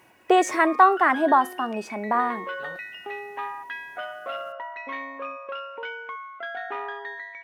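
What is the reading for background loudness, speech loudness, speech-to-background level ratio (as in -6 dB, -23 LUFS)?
-35.0 LUFS, -21.5 LUFS, 13.5 dB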